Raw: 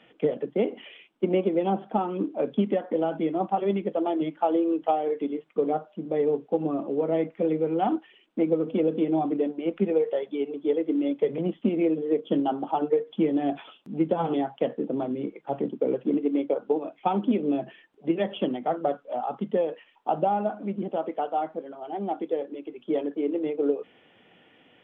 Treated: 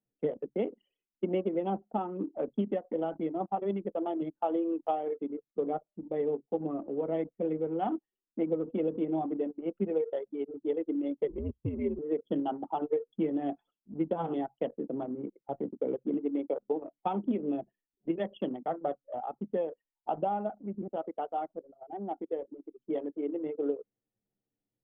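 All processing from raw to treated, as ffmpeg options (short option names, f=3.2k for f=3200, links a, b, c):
-filter_complex "[0:a]asettb=1/sr,asplit=3[a][b][c];[a]atrim=end=11.284[d];[b]atrim=start=11.28:end=11.99,asetpts=PTS-STARTPTS,afade=t=in:d=0.004:c=qsin,afade=t=out:st=0.706:d=0.004:c=qsin,equalizer=f=1.6k:w=2.6:g=-11.5,aecho=1:1:1.8:0.61,atrim=end_sample=31311,afreqshift=-96[e];[c]atrim=start=11.986[f];[d][e]acrossfade=d=0.004:c1=hsin:c2=qsin[g];[g][f]acrossfade=d=0.004:c1=qsin:c2=hsin,bandreject=f=2.4k:w=16,anlmdn=25.1,volume=-6.5dB"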